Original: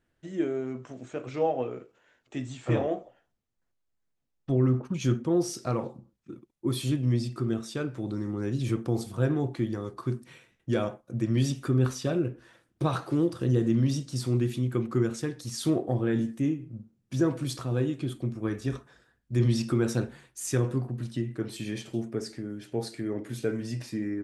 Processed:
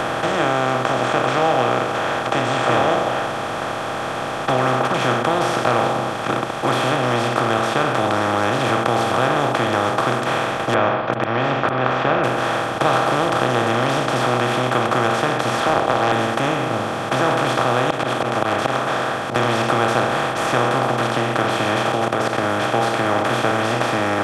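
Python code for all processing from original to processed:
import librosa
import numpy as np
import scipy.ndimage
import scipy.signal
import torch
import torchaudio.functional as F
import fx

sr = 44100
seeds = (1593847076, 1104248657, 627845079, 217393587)

y = fx.chain(x, sr, fx.steep_lowpass(hz=2400.0, slope=48),
    fx.auto_swell(attack_ms=328.0), at=(10.74, 12.24))
y = fx.chain(y, sr, fx.bandpass_edges(low_hz=400.0, high_hz=5600.0),
    fx.doppler_dist(depth_ms=0.75), at=(15.6, 16.12))
y = fx.chain(y, sr, fx.bessel_highpass(hz=200.0, order=2),
    fx.auto_swell(attack_ms=264.0),
    fx.doppler_dist(depth_ms=0.89), at=(17.9, 19.36))
y = fx.chain(y, sr, fx.peak_eq(hz=480.0, db=8.5, octaves=0.82),
    fx.hum_notches(base_hz=60, count=9),
    fx.level_steps(step_db=19), at=(21.92, 22.43))
y = fx.bin_compress(y, sr, power=0.2)
y = fx.band_shelf(y, sr, hz=1400.0, db=14.5, octaves=2.8)
y = fx.band_squash(y, sr, depth_pct=40)
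y = F.gain(torch.from_numpy(y), -5.5).numpy()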